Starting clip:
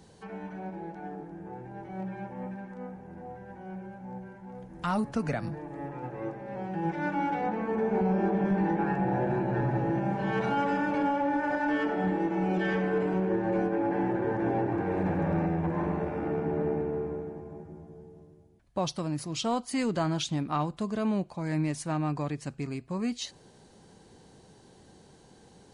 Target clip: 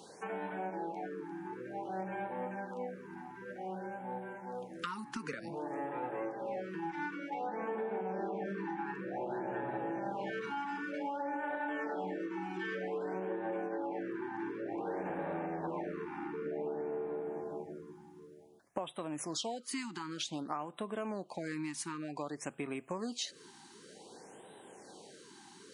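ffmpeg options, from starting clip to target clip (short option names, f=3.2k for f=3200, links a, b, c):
-af "highpass=350,acompressor=threshold=-40dB:ratio=10,afftfilt=real='re*(1-between(b*sr/1024,530*pow(5700/530,0.5+0.5*sin(2*PI*0.54*pts/sr))/1.41,530*pow(5700/530,0.5+0.5*sin(2*PI*0.54*pts/sr))*1.41))':imag='im*(1-between(b*sr/1024,530*pow(5700/530,0.5+0.5*sin(2*PI*0.54*pts/sr))/1.41,530*pow(5700/530,0.5+0.5*sin(2*PI*0.54*pts/sr))*1.41))':win_size=1024:overlap=0.75,volume=5.5dB"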